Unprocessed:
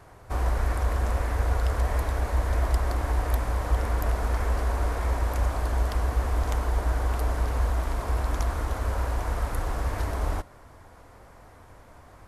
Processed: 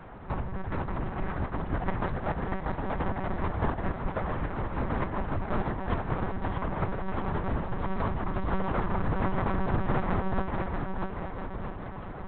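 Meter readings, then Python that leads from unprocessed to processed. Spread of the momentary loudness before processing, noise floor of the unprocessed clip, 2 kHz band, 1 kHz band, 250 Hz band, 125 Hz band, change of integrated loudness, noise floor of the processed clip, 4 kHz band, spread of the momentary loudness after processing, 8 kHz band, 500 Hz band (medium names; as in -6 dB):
4 LU, -51 dBFS, -1.0 dB, +0.5 dB, +6.5 dB, -5.0 dB, -4.0 dB, -39 dBFS, -7.0 dB, 6 LU, under -35 dB, 0.0 dB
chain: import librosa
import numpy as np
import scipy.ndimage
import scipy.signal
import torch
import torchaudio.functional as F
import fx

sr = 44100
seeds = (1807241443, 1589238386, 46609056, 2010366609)

p1 = fx.lowpass(x, sr, hz=2100.0, slope=6)
p2 = fx.notch(p1, sr, hz=560.0, q=12.0)
p3 = fx.over_compress(p2, sr, threshold_db=-31.0, ratio=-1.0)
p4 = p3 + fx.echo_feedback(p3, sr, ms=640, feedback_pct=57, wet_db=-4.0, dry=0)
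y = fx.lpc_monotone(p4, sr, seeds[0], pitch_hz=190.0, order=8)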